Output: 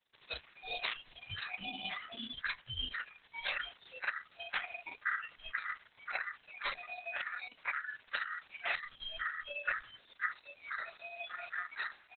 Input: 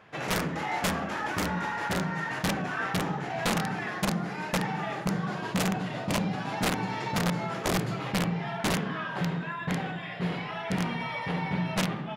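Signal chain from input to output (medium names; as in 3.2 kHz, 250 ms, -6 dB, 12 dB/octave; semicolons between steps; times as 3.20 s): comb filter that takes the minimum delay 2 ms; in parallel at +2 dB: gain riding within 4 dB 0.5 s; on the sum: ring modulator 1.6 kHz; pre-emphasis filter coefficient 0.8; on a send: delay 419 ms -16.5 dB; on the sum: spectral noise reduction 25 dB; de-hum 422.8 Hz, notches 27; trim +5 dB; Opus 6 kbps 48 kHz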